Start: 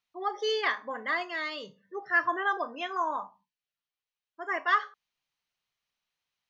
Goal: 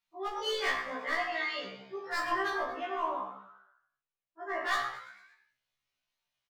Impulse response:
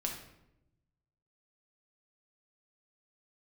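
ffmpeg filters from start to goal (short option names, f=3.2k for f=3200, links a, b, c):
-filter_complex "[0:a]asoftclip=type=hard:threshold=-24dB,asettb=1/sr,asplit=3[a][b][c];[a]atrim=end=2.504[d];[b]atrim=start=2.5:end=4.6,asetpts=PTS-STARTPTS,afade=t=in:d=0.004:c=qsin,afade=t=out:st=2.096:d=0.004:c=qsin,highshelf=f=2.4k:g=-12[e];[c]atrim=start=4.596[f];[d][e]acrossfade=d=0.004:c1=hsin:c2=qsin[g];[g][f]acrossfade=d=0.004:c1=qsin:c2=hsin,asplit=6[h][i][j][k][l][m];[i]adelay=113,afreqshift=97,volume=-15.5dB[n];[j]adelay=226,afreqshift=194,volume=-20.9dB[o];[k]adelay=339,afreqshift=291,volume=-26.2dB[p];[l]adelay=452,afreqshift=388,volume=-31.6dB[q];[m]adelay=565,afreqshift=485,volume=-36.9dB[r];[h][n][o][p][q][r]amix=inputs=6:normalize=0[s];[1:a]atrim=start_sample=2205,afade=t=out:st=0.29:d=0.01,atrim=end_sample=13230[t];[s][t]afir=irnorm=-1:irlink=0,afftfilt=real='re*1.73*eq(mod(b,3),0)':imag='im*1.73*eq(mod(b,3),0)':win_size=2048:overlap=0.75"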